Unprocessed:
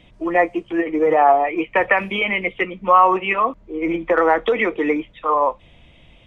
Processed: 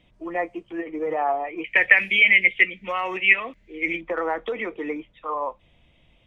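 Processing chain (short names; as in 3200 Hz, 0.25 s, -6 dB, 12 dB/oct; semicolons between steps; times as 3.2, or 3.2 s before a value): 1.64–4.01 resonant high shelf 1500 Hz +10 dB, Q 3; gain -10 dB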